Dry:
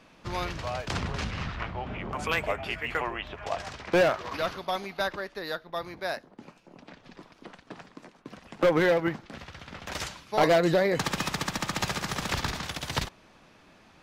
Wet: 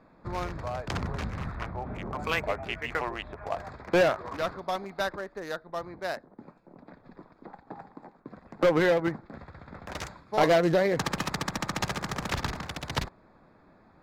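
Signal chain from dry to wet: Wiener smoothing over 15 samples; 7.47–8.14 bell 820 Hz +14 dB 0.23 oct

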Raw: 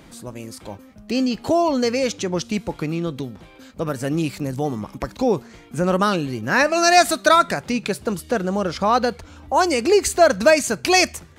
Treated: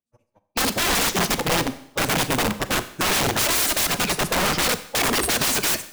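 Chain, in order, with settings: spectral delete 9.39–10.2, 1300–8200 Hz; gate -27 dBFS, range -59 dB; in parallel at 0 dB: compressor 16:1, threshold -22 dBFS, peak gain reduction 14.5 dB; on the sum: wavefolder -3 dBFS; plain phase-vocoder stretch 0.52×; wrapped overs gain 20 dB; Schroeder reverb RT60 0.69 s, combs from 30 ms, DRR 12.5 dB; gain +4 dB

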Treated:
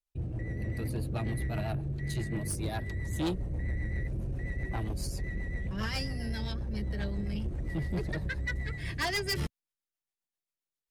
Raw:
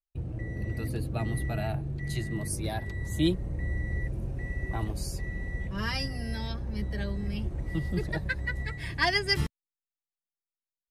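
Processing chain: rotary speaker horn 7.5 Hz; soft clip -29.5 dBFS, distortion -10 dB; gain +2.5 dB

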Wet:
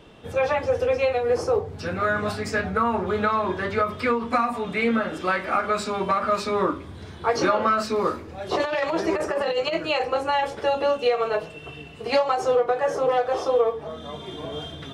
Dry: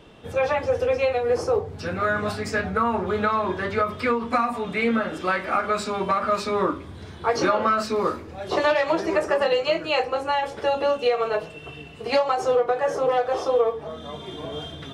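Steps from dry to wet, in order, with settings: 8.54–10.55 negative-ratio compressor -22 dBFS, ratio -0.5

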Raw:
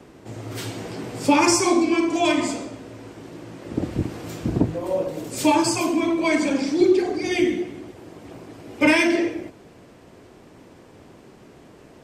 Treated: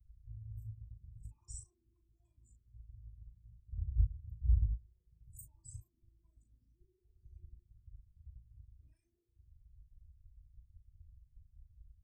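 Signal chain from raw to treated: formant sharpening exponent 3; inverse Chebyshev band-stop 270–4400 Hz, stop band 70 dB; doubler 37 ms -7.5 dB; gain +6.5 dB

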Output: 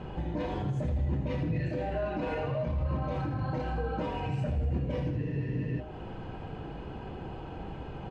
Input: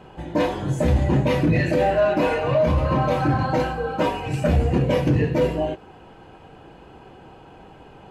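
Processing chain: LPF 5300 Hz 12 dB/oct; low shelf 220 Hz +10.5 dB; compressor 2.5:1, threshold -34 dBFS, peak gain reduction 18.5 dB; limiter -25 dBFS, peak gain reduction 6 dB; on a send: feedback echo 81 ms, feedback 48%, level -8.5 dB; on the sum: spectral freeze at 5.19, 0.61 s

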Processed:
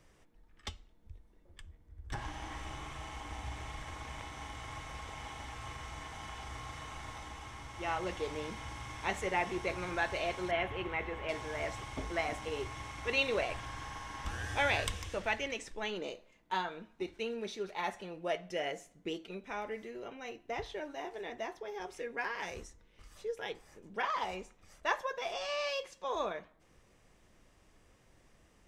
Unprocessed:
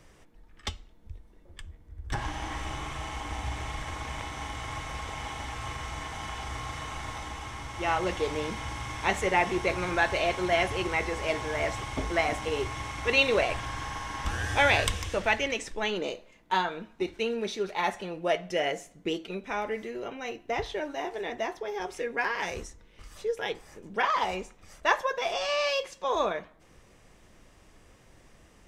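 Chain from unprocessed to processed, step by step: 10.51–11.29 band shelf 7200 Hz -16 dB; gain -8 dB

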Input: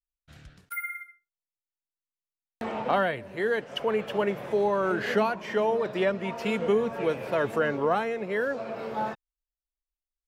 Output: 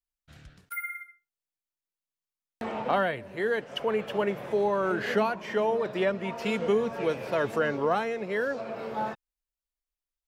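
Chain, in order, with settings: 6.42–8.61 bell 5200 Hz +5 dB 0.92 oct; gain -1 dB

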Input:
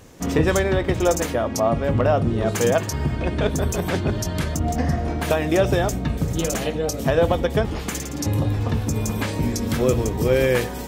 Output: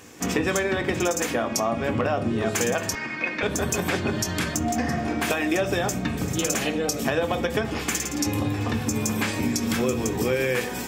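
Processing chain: reverb RT60 0.40 s, pre-delay 3 ms, DRR 8.5 dB; compressor, threshold -23 dBFS, peak gain reduction 7.5 dB; 2.95–3.43 speaker cabinet 350–6100 Hz, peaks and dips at 400 Hz -10 dB, 720 Hz -7 dB, 2200 Hz +9 dB, 3200 Hz -7 dB; gain +3 dB

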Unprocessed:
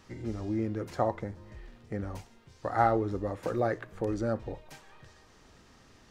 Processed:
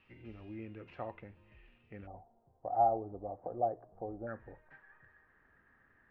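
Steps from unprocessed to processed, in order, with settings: ladder low-pass 2800 Hz, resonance 80%, from 2.06 s 770 Hz, from 4.26 s 1800 Hz; gain -2 dB

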